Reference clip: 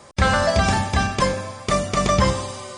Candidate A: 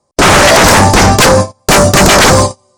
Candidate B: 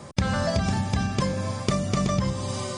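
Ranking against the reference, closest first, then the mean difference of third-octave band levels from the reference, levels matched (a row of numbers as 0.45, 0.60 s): B, A; 4.5, 9.5 dB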